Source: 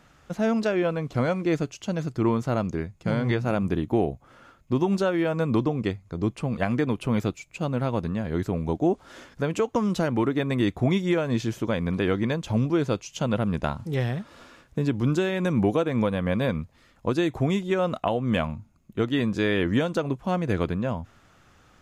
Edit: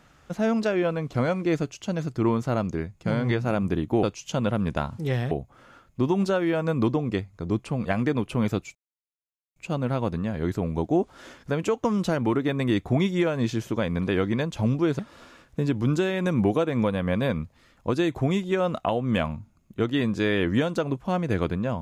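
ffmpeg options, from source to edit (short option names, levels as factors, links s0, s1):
-filter_complex "[0:a]asplit=5[s0][s1][s2][s3][s4];[s0]atrim=end=4.032[s5];[s1]atrim=start=12.898:end=14.182[s6];[s2]atrim=start=4.028:end=7.47,asetpts=PTS-STARTPTS,afade=t=out:st=3.438:d=0.004:c=hsin,apad=pad_dur=0.81[s7];[s3]atrim=start=7.47:end=12.902,asetpts=PTS-STARTPTS,afade=t=in:d=0.004:c=hsin[s8];[s4]atrim=start=14.178[s9];[s5][s6]acrossfade=d=0.004:c1=hsin:c2=hsin[s10];[s7][s8]concat=n=2:v=0:a=1[s11];[s10][s11]acrossfade=d=0.004:c1=hsin:c2=hsin[s12];[s12][s9]acrossfade=d=0.004:c1=hsin:c2=hsin"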